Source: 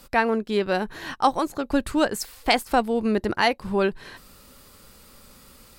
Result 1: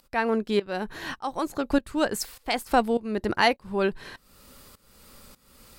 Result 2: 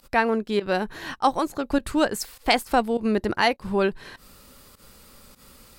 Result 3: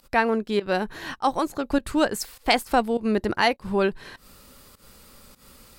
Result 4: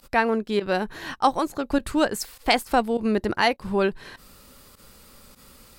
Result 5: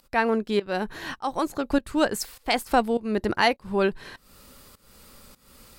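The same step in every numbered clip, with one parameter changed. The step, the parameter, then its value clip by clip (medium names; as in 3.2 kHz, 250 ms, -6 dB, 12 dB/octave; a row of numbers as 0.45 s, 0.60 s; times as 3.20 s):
volume shaper, release: 529 ms, 99 ms, 152 ms, 64 ms, 352 ms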